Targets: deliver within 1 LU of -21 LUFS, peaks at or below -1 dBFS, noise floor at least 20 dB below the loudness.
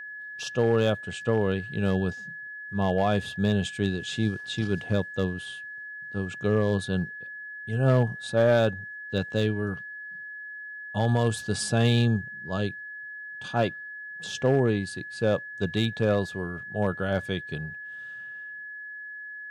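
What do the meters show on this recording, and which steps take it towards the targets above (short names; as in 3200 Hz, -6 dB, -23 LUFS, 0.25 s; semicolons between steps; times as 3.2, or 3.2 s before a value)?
clipped 0.3%; flat tops at -14.5 dBFS; steady tone 1700 Hz; tone level -37 dBFS; loudness -27.0 LUFS; peak -14.5 dBFS; loudness target -21.0 LUFS
-> clip repair -14.5 dBFS; notch 1700 Hz, Q 30; gain +6 dB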